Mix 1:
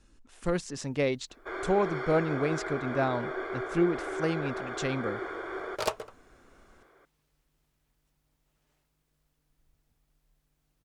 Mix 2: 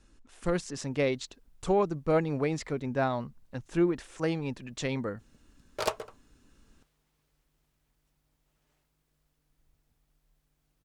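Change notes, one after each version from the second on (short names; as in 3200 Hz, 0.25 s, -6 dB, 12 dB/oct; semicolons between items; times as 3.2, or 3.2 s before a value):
first sound: muted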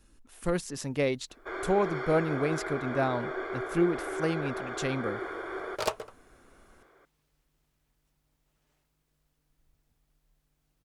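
speech: remove LPF 8300 Hz 24 dB/oct; first sound: unmuted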